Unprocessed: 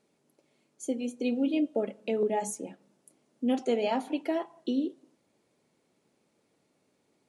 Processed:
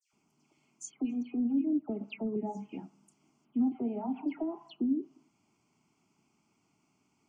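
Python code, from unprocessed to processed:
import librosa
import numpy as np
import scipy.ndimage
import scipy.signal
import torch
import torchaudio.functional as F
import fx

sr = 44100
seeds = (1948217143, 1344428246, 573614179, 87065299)

y = fx.env_lowpass_down(x, sr, base_hz=480.0, full_db=-25.5)
y = fx.fixed_phaser(y, sr, hz=2600.0, stages=8)
y = fx.dispersion(y, sr, late='lows', ms=134.0, hz=2100.0)
y = y * librosa.db_to_amplitude(3.0)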